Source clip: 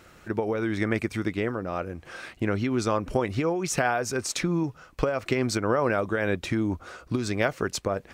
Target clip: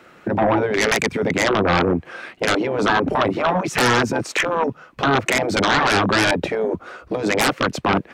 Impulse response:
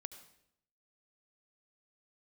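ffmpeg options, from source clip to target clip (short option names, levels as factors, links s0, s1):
-filter_complex "[0:a]afwtdn=0.0251,afftfilt=real='re*lt(hypot(re,im),0.141)':imag='im*lt(hypot(re,im),0.141)':win_size=1024:overlap=0.75,acrossover=split=150 3600:gain=0.126 1 0.126[s0][s1][s2];[s0][s1][s2]amix=inputs=3:normalize=0,acrossover=split=150|6000[s3][s4][s5];[s5]acontrast=89[s6];[s3][s4][s6]amix=inputs=3:normalize=0,aeval=exprs='0.141*sin(PI/2*5.01*val(0)/0.141)':c=same,volume=1.78"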